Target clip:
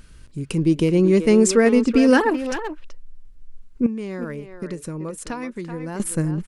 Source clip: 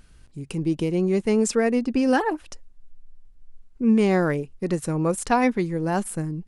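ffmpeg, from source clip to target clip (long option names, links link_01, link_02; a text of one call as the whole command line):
ffmpeg -i in.wav -filter_complex "[0:a]equalizer=frequency=760:width=6.1:gain=-10.5,asettb=1/sr,asplit=3[link_01][link_02][link_03];[link_01]atrim=end=3.864[link_04];[link_02]atrim=start=3.86:end=6,asetpts=PTS-STARTPTS,afade=type=in:duration=0.004:curve=qsin,afade=type=out:start_time=2.136:duration=0.004:curve=qsin,acompressor=threshold=-35dB:ratio=5[link_05];[link_03]atrim=start=5.996[link_06];[link_04][link_05]acrossfade=duration=0.004:curve1=hsin:curve2=qsin[link_07];[link_07][link_06]acrossfade=duration=0.004:curve1=qsin:curve2=hsin,asplit=2[link_08][link_09];[link_09]adelay=380,highpass=300,lowpass=3400,asoftclip=type=hard:threshold=-20dB,volume=-8dB[link_10];[link_08][link_10]amix=inputs=2:normalize=0,volume=6dB" out.wav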